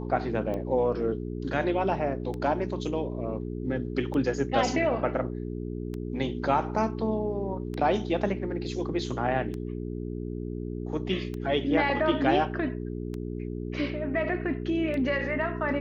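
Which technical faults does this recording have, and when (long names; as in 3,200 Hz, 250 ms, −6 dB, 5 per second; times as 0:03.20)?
mains hum 60 Hz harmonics 7 −34 dBFS
scratch tick 33 1/3 rpm −23 dBFS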